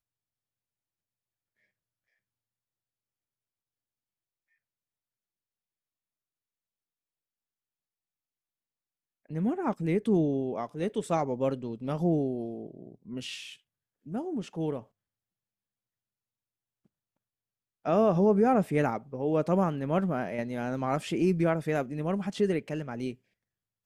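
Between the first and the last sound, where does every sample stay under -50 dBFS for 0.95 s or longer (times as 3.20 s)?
14.84–17.85 s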